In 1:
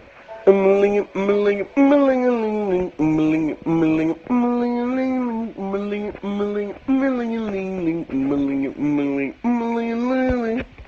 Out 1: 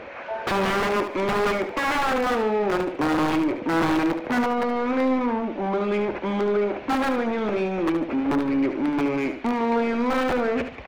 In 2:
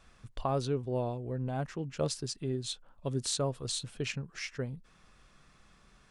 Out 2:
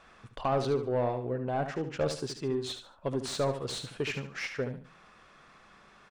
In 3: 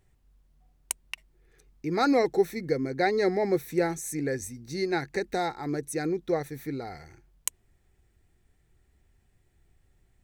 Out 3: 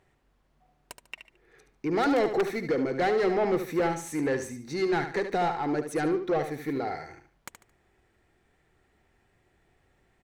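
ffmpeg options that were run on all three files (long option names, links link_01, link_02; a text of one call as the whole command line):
ffmpeg -i in.wav -filter_complex "[0:a]aeval=exprs='(mod(4.47*val(0)+1,2)-1)/4.47':channel_layout=same,asplit=2[link_01][link_02];[link_02]highpass=frequency=720:poles=1,volume=22dB,asoftclip=type=tanh:threshold=-13dB[link_03];[link_01][link_03]amix=inputs=2:normalize=0,lowpass=frequency=1300:poles=1,volume=-6dB,aecho=1:1:73|146|219:0.355|0.103|0.0298,volume=-4dB" out.wav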